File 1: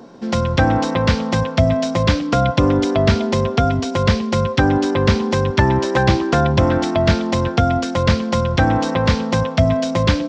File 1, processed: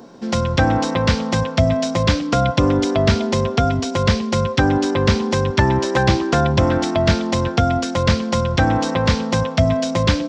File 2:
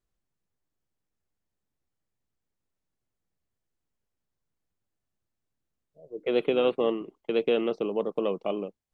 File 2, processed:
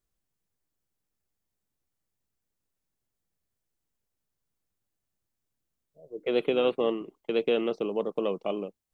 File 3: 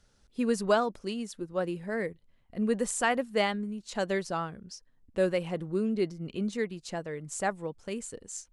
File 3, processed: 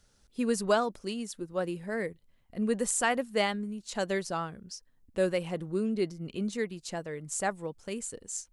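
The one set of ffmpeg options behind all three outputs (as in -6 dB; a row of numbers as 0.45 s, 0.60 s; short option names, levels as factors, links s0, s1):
-af "highshelf=f=6400:g=7.5,volume=0.891"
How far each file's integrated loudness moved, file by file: -1.0 LU, -1.0 LU, -0.5 LU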